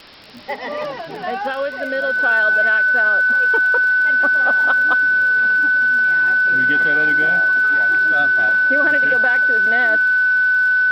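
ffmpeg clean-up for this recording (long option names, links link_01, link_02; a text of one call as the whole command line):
ffmpeg -i in.wav -af "adeclick=threshold=4,bandreject=frequency=1500:width=30,afwtdn=0.013" out.wav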